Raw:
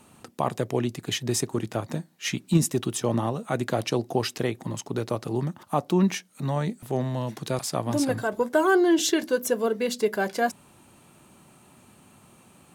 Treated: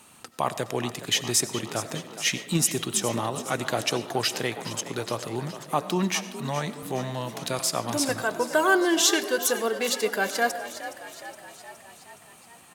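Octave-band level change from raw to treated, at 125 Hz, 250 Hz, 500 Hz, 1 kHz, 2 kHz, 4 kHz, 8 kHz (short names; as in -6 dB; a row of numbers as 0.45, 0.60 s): -5.5, -4.0, -2.0, +1.5, +4.0, +6.0, +6.5 dB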